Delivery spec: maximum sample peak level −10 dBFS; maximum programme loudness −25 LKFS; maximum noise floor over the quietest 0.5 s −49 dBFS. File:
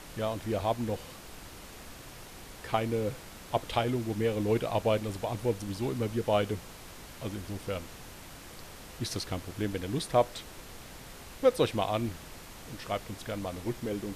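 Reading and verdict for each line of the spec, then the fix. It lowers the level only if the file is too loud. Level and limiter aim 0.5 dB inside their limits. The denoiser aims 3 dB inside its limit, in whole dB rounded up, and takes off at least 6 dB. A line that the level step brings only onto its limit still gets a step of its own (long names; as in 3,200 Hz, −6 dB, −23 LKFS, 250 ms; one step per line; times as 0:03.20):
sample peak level −12.5 dBFS: in spec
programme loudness −32.0 LKFS: in spec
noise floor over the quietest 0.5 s −47 dBFS: out of spec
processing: broadband denoise 6 dB, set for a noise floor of −47 dBFS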